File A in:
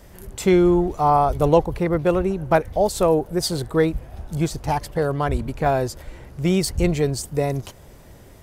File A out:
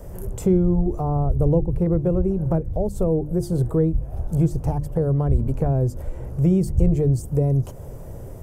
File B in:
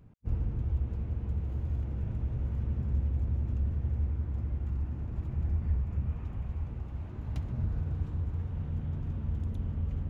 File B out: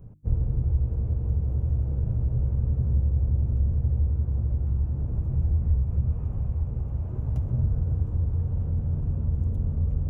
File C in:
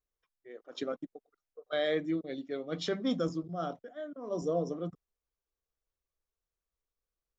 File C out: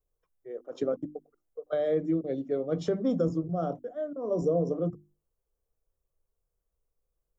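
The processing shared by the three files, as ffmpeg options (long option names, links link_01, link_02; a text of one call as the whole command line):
ffmpeg -i in.wav -filter_complex "[0:a]lowshelf=frequency=71:gain=11.5,acrossover=split=330[link_01][link_02];[link_02]acompressor=threshold=-33dB:ratio=5[link_03];[link_01][link_03]amix=inputs=2:normalize=0,bandreject=frequency=50:width_type=h:width=6,bandreject=frequency=100:width_type=h:width=6,bandreject=frequency=150:width_type=h:width=6,bandreject=frequency=200:width_type=h:width=6,bandreject=frequency=250:width_type=h:width=6,bandreject=frequency=300:width_type=h:width=6,bandreject=frequency=350:width_type=h:width=6,asplit=2[link_04][link_05];[link_05]acompressor=threshold=-32dB:ratio=6,volume=1dB[link_06];[link_04][link_06]amix=inputs=2:normalize=0,equalizer=frequency=125:width_type=o:width=1:gain=7,equalizer=frequency=500:width_type=o:width=1:gain=7,equalizer=frequency=2000:width_type=o:width=1:gain=-7,equalizer=frequency=4000:width_type=o:width=1:gain=-12,volume=-3.5dB" out.wav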